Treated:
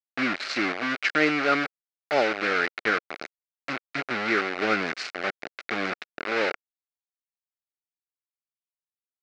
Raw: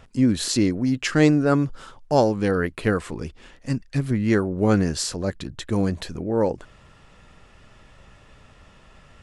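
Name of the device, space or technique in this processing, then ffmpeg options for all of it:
hand-held game console: -af "acrusher=bits=3:mix=0:aa=0.000001,highpass=470,equalizer=f=500:t=q:w=4:g=-5,equalizer=f=940:t=q:w=4:g=-10,equalizer=f=1.4k:t=q:w=4:g=6,equalizer=f=2.2k:t=q:w=4:g=6,equalizer=f=3.3k:t=q:w=4:g=-6,lowpass=f=4.2k:w=0.5412,lowpass=f=4.2k:w=1.3066"

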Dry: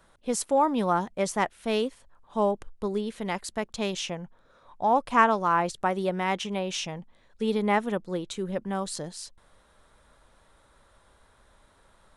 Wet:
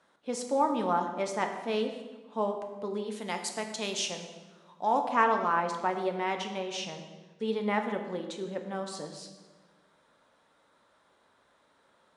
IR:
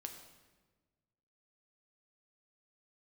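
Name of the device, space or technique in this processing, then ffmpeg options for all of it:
supermarket ceiling speaker: -filter_complex "[0:a]asettb=1/sr,asplit=3[a][b][c];[a]atrim=end=3.114[d];[b]atrim=start=3.11:end=5.01,asetpts=PTS-STARTPTS,afade=t=in:d=0.004:c=qsin,afade=t=out:st=1.896:d=0.004:c=qsin,aemphasis=mode=production:type=75fm[e];[c]atrim=start=5.006[f];[d][e]acrossfade=d=0.004:c1=hsin:c2=qsin[g];[g][f]acrossfade=d=0.004:c1=qsin:c2=hsin,highpass=200,lowpass=6.9k[h];[1:a]atrim=start_sample=2205[i];[h][i]afir=irnorm=-1:irlink=0"

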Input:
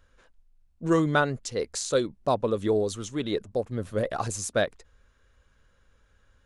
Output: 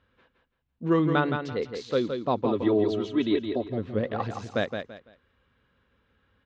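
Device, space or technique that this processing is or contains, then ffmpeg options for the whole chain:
guitar cabinet: -filter_complex "[0:a]highpass=89,equalizer=f=240:t=q:w=4:g=4,equalizer=f=610:t=q:w=4:g=-5,equalizer=f=1.5k:t=q:w=4:g=-4,lowpass=f=3.7k:w=0.5412,lowpass=f=3.7k:w=1.3066,asettb=1/sr,asplit=3[a][b][c];[a]atrim=end=2.454[d];[b]atrim=start=2.45:end=3.68,asetpts=PTS-STARTPTS,afade=t=in:d=0.004:c=qsin,afade=t=out:st=1.226:d=0.004:c=qsin,aecho=1:1:3.1:0.98,atrim=end_sample=54243[e];[c]atrim=start=3.676[f];[d][e]acrossfade=d=0.004:c1=hsin:c2=qsin[g];[g][f]acrossfade=d=0.004:c1=qsin:c2=hsin,aecho=1:1:168|336|504:0.473|0.128|0.0345"

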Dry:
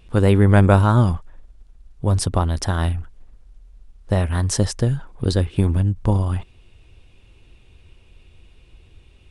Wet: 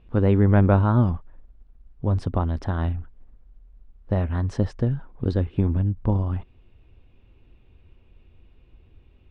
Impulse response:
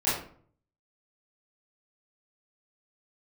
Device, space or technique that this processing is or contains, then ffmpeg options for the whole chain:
phone in a pocket: -af "lowpass=3.4k,equalizer=f=250:t=o:w=0.42:g=4,highshelf=f=2k:g=-9,volume=-4dB"

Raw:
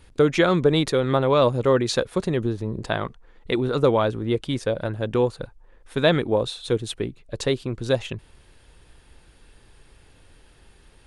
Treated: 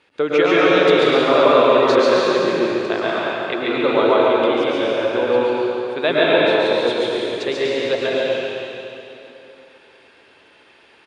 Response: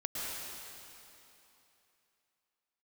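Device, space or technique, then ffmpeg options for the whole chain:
station announcement: -filter_complex "[0:a]highpass=350,lowpass=4.1k,equalizer=f=2.5k:t=o:w=0.45:g=5,aecho=1:1:139.9|244.9:0.794|0.282[a];[1:a]atrim=start_sample=2205[b];[a][b]afir=irnorm=-1:irlink=0,volume=2dB"

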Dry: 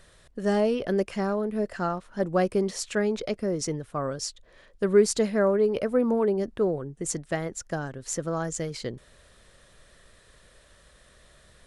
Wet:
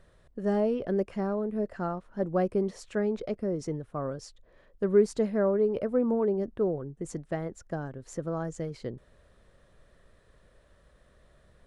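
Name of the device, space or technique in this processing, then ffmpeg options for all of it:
through cloth: -af "highshelf=f=1.9k:g=-14.5,volume=-2dB"

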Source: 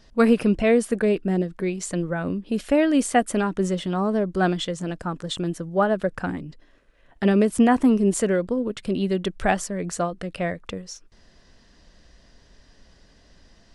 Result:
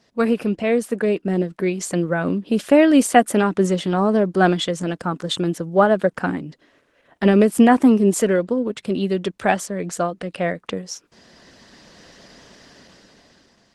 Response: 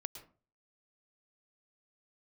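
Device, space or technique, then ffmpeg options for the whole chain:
video call: -af "highpass=160,dynaudnorm=f=280:g=9:m=16dB,volume=-1dB" -ar 48000 -c:a libopus -b:a 16k

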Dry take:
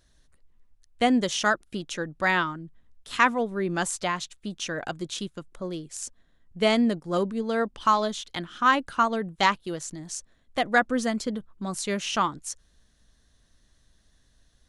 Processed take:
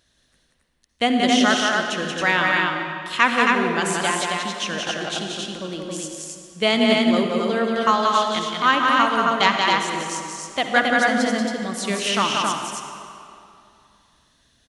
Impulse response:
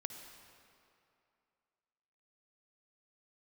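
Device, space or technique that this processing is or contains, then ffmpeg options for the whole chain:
stadium PA: -filter_complex "[0:a]highpass=f=130:p=1,equalizer=f=2.9k:t=o:w=1.1:g=6,aecho=1:1:180.8|271.1:0.631|0.708[a];[1:a]atrim=start_sample=2205[b];[a][b]afir=irnorm=-1:irlink=0,volume=4.5dB"

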